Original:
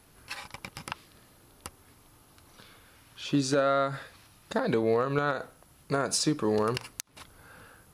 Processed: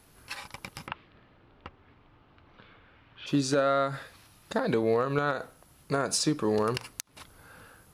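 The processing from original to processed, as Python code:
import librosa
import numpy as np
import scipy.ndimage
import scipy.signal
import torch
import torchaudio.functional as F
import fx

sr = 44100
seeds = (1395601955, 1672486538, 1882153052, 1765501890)

y = fx.lowpass(x, sr, hz=3100.0, slope=24, at=(0.86, 3.26), fade=0.02)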